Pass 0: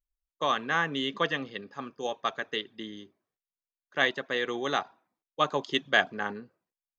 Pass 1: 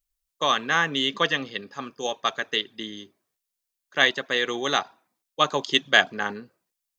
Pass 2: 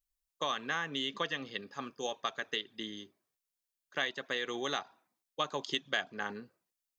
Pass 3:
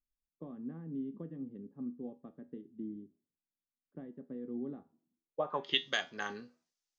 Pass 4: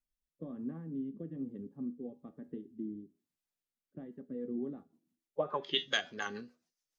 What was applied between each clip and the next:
high shelf 3000 Hz +10.5 dB; gain +3 dB
compressor 3:1, threshold -26 dBFS, peak gain reduction 11 dB; gain -6 dB
resonator 81 Hz, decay 0.28 s, harmonics all, mix 60%; low-pass sweep 250 Hz -> 5900 Hz, 5.2–5.9; gain +3 dB
bin magnitudes rounded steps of 15 dB; rotary speaker horn 1.1 Hz, later 7 Hz, at 3.89; gain +3.5 dB

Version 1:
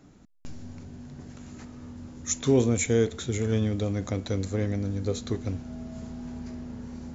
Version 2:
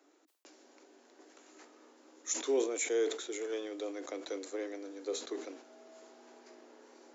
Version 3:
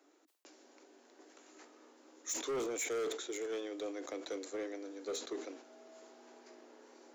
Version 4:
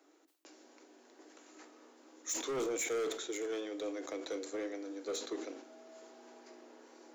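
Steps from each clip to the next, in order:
steep high-pass 300 Hz 72 dB/oct; sustainer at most 100 dB/s; gain -6.5 dB
in parallel at -7.5 dB: bit-crush 5-bit; on the sum: overloaded stage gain 32.5 dB; gain -1 dB
shoebox room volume 810 m³, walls furnished, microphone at 0.63 m; gain +1 dB

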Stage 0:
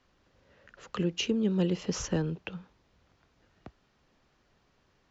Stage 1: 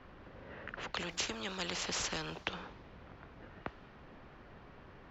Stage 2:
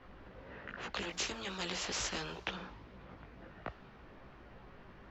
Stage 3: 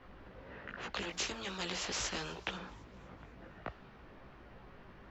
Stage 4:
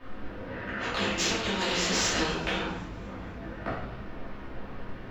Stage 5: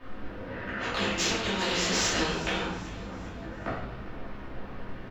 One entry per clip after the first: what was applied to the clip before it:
low-pass opened by the level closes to 2100 Hz, open at -29.5 dBFS; spectral compressor 4:1; gain +1 dB
chorus voices 4, 1.2 Hz, delay 18 ms, depth 3.1 ms; gain +2.5 dB
thin delay 0.25 s, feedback 49%, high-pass 4400 Hz, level -20.5 dB
in parallel at -5.5 dB: soft clip -35 dBFS, distortion -12 dB; on the sum: shoebox room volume 250 m³, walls mixed, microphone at 2.7 m
feedback echo 0.398 s, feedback 46%, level -18 dB

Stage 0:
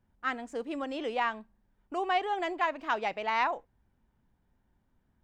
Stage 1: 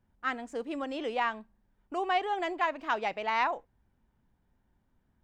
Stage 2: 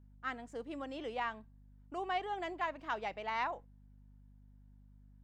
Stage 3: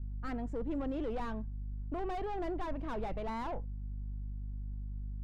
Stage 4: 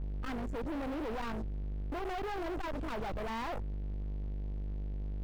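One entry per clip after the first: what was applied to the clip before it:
nothing audible
notch 2500 Hz, Q 22; hum 50 Hz, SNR 18 dB; gain -7.5 dB
tube stage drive 43 dB, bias 0.3; tilt -4 dB/oct; gain +5 dB
sample leveller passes 5; gain -8.5 dB

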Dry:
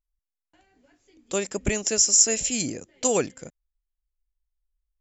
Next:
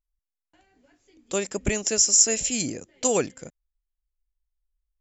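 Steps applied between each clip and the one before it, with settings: nothing audible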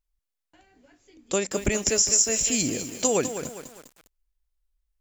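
compressor 2.5:1, threshold -24 dBFS, peak gain reduction 8 dB; lo-fi delay 0.202 s, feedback 55%, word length 7-bit, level -9 dB; gain +3.5 dB

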